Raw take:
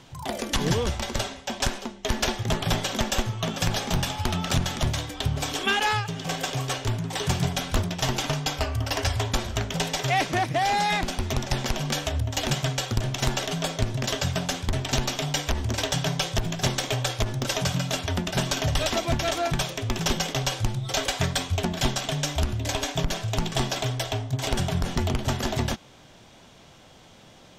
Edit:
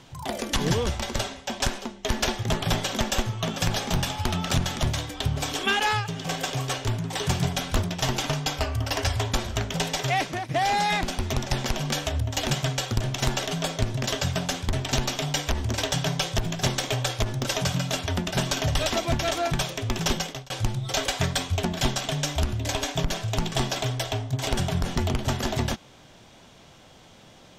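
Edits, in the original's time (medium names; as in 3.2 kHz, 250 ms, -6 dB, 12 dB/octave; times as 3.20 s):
9.94–10.49 s: fade out equal-power, to -12 dB
20.13–20.50 s: fade out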